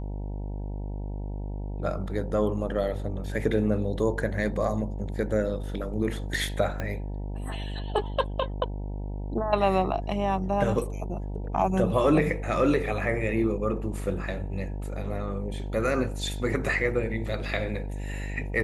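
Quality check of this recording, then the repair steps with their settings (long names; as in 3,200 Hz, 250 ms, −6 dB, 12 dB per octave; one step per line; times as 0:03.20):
mains buzz 50 Hz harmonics 19 −33 dBFS
0:06.80: click −18 dBFS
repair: click removal
hum removal 50 Hz, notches 19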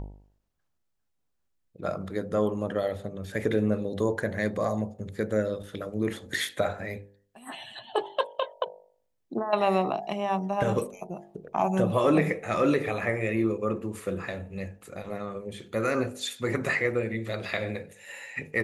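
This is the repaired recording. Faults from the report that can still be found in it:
0:06.80: click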